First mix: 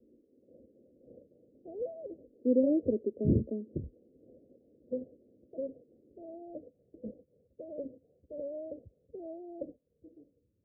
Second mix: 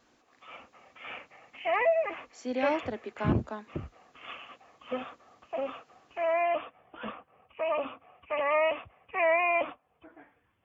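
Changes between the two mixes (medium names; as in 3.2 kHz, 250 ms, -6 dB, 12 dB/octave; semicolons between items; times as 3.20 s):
speech -7.5 dB; master: remove steep low-pass 540 Hz 72 dB/octave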